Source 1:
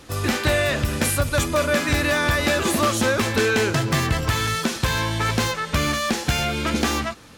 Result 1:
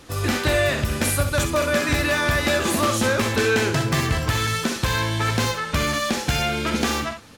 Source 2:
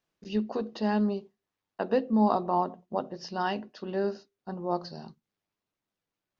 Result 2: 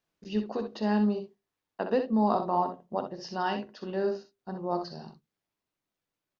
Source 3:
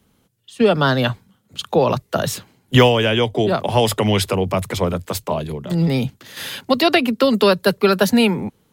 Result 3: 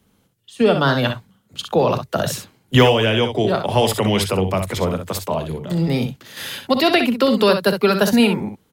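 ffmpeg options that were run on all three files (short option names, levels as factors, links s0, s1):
-af "aecho=1:1:43|63:0.168|0.398,volume=0.891"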